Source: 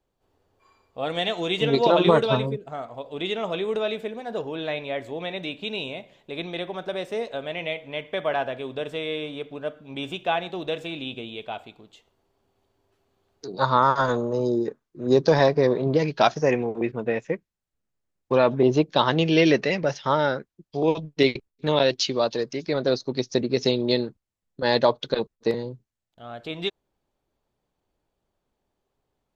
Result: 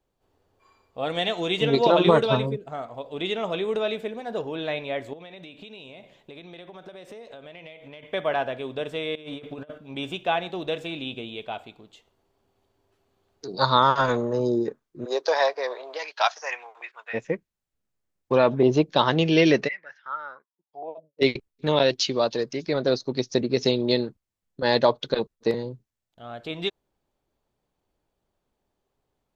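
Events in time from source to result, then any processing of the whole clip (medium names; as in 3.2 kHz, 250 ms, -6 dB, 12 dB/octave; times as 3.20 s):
5.13–8.03 s: compression 12:1, threshold -39 dBFS
9.15–9.78 s: compressor with a negative ratio -37 dBFS, ratio -0.5
13.48–14.38 s: peaking EQ 5.5 kHz -> 1.6 kHz +13.5 dB 0.36 oct
15.04–17.13 s: high-pass 490 Hz -> 1.1 kHz 24 dB/octave
19.67–21.21 s: band-pass filter 2.1 kHz -> 510 Hz, Q 9.1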